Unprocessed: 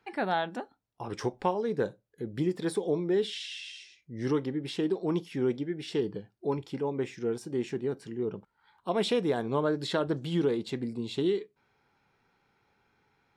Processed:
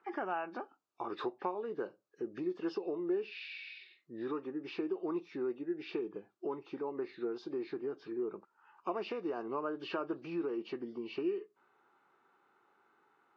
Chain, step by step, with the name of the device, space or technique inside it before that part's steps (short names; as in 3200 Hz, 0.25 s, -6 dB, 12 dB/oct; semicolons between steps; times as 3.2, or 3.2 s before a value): 7.57–8.16 comb 6.6 ms, depth 38%; hearing aid with frequency lowering (nonlinear frequency compression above 1600 Hz 1.5:1; compressor 3:1, threshold -36 dBFS, peak gain reduction 11 dB; speaker cabinet 340–6900 Hz, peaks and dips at 350 Hz +7 dB, 500 Hz -3 dB, 1200 Hz +9 dB, 2000 Hz -6 dB, 3200 Hz -7 dB, 5500 Hz -4 dB)